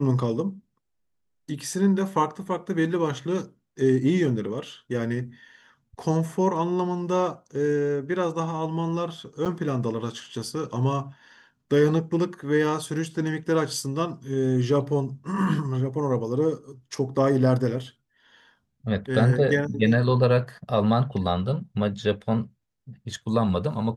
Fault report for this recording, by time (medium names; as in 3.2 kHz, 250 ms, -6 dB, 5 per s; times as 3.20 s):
9.45–9.46 s: dropout 6.6 ms